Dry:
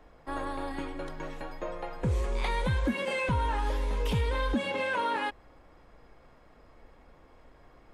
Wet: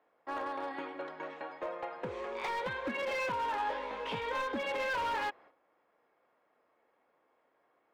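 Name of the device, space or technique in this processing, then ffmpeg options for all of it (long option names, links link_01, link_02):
walkie-talkie: -filter_complex "[0:a]highpass=410,lowpass=2800,asoftclip=type=hard:threshold=-30.5dB,agate=range=-12dB:threshold=-57dB:ratio=16:detection=peak,asettb=1/sr,asplit=3[link_01][link_02][link_03];[link_01]atrim=end=3.584[link_04];[link_02]atrim=start=3.58:end=4.42,asetpts=PTS-STARTPTS,afade=type=in:duration=0.004:curve=qsin,afade=type=out:start_time=0.836:duration=0.004:curve=qsin,asplit=2[link_05][link_06];[link_06]adelay=18,volume=-4dB[link_07];[link_05][link_07]amix=inputs=2:normalize=0,atrim=end_sample=37044[link_08];[link_03]atrim=start=4.416[link_09];[link_04][link_08]acrossfade=duration=0.004:curve1=hsin:curve2=qsin[link_10];[link_10][link_09]acrossfade=duration=0.004:curve1=qsin:curve2=hsin"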